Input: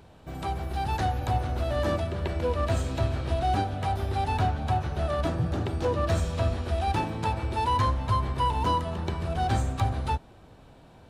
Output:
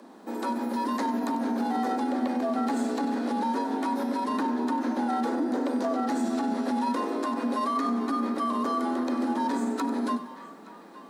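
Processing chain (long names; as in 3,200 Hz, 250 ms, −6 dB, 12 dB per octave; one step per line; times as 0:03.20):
parametric band 2,700 Hz −9 dB 0.67 octaves
feedback echo with a band-pass in the loop 869 ms, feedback 72%, band-pass 1,800 Hz, level −19 dB
frequency shifter +170 Hz
brickwall limiter −24 dBFS, peak gain reduction 11 dB
feedback echo at a low word length 95 ms, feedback 35%, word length 10 bits, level −13 dB
level +3.5 dB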